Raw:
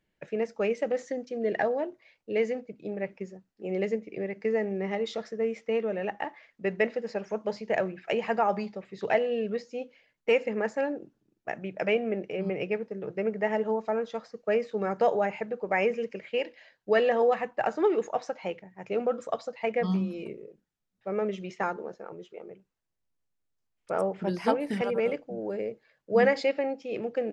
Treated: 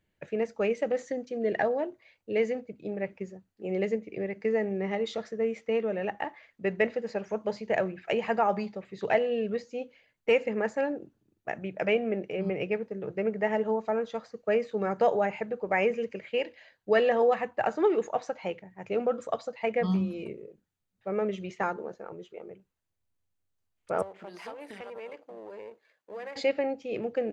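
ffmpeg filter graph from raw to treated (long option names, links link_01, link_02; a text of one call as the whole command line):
ffmpeg -i in.wav -filter_complex "[0:a]asettb=1/sr,asplit=3[link_01][link_02][link_03];[link_01]atrim=end=24.024[link_04];[link_02]atrim=start=24.02:end=26.36,asetpts=PTS-STARTPTS,afade=type=in:duration=0.004:curve=qsin,afade=type=out:start_time=2.336:duration=0.004:curve=qsin,aeval=exprs='if(lt(val(0),0),0.447*val(0),val(0))':channel_layout=same,highpass=390,acompressor=threshold=-41dB:ratio=3:attack=3.2:release=140:knee=1:detection=peak[link_05];[link_03]atrim=start=26.356[link_06];[link_04][link_05]acrossfade=duration=0.004:curve1=hsin:curve2=qsin[link_07];[link_07][link_06]acrossfade=duration=0.004:curve1=qsin:curve2=hsin,equalizer=frequency=91:width=3.6:gain=13.5,bandreject=frequency=5300:width=11" out.wav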